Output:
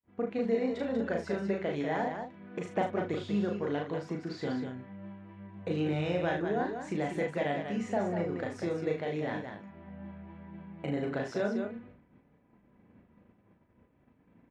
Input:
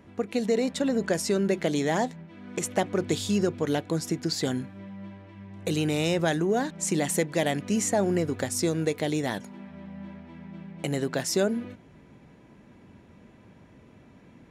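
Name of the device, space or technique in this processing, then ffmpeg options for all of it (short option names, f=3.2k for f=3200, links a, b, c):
hearing-loss simulation: -filter_complex "[0:a]asplit=2[a][b];[b]adelay=39,volume=-5.5dB[c];[a][c]amix=inputs=2:normalize=0,aecho=1:1:34.99|192.4:0.631|0.501,adynamicequalizer=threshold=0.0178:dfrequency=240:dqfactor=0.77:tfrequency=240:tqfactor=0.77:attack=5:release=100:ratio=0.375:range=3:mode=cutabove:tftype=bell,lowpass=2.1k,agate=range=-33dB:threshold=-42dB:ratio=3:detection=peak,volume=-6dB"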